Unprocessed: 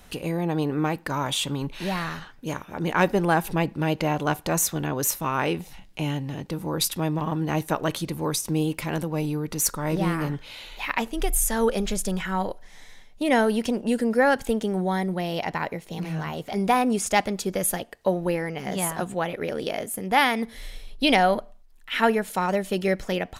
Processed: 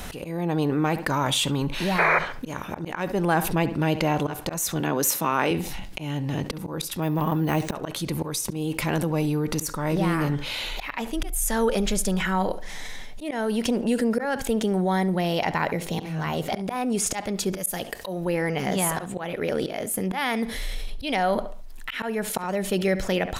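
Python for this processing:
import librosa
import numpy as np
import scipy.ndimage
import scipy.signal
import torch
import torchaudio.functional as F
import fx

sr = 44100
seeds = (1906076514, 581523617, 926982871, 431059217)

p1 = fx.highpass(x, sr, hz=160.0, slope=24, at=(4.8, 5.51))
p2 = fx.high_shelf(p1, sr, hz=4900.0, db=10.0, at=(17.56, 18.25))
p3 = fx.auto_swell(p2, sr, attack_ms=388.0)
p4 = fx.spec_paint(p3, sr, seeds[0], shape='noise', start_s=1.98, length_s=0.21, low_hz=340.0, high_hz=2500.0, level_db=-18.0)
p5 = p4 + fx.echo_filtered(p4, sr, ms=69, feedback_pct=24, hz=3800.0, wet_db=-19, dry=0)
p6 = fx.resample_bad(p5, sr, factor=3, down='filtered', up='hold', at=(7.02, 7.74))
p7 = fx.env_flatten(p6, sr, amount_pct=50)
y = p7 * 10.0 ** (-2.0 / 20.0)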